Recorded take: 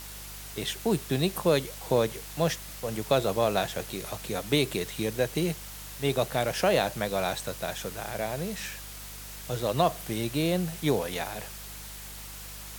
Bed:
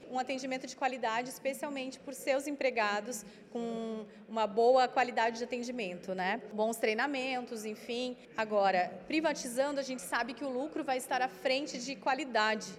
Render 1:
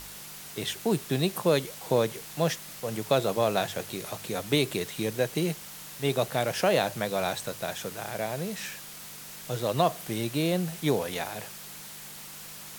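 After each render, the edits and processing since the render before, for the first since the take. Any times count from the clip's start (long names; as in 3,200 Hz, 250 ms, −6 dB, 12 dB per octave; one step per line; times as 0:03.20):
hum removal 50 Hz, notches 2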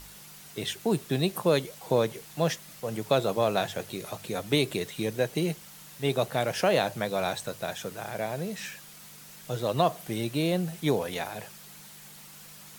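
broadband denoise 6 dB, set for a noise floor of −44 dBFS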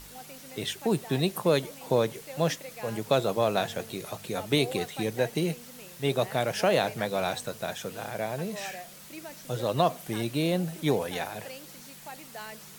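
mix in bed −12.5 dB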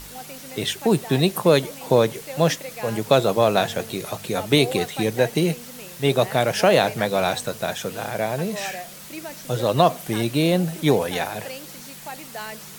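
level +7.5 dB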